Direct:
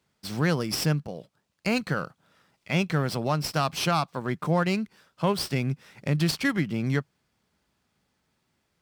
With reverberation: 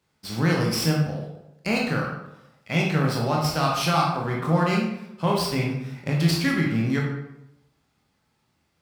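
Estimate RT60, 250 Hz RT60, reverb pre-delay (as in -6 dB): 0.85 s, 0.95 s, 17 ms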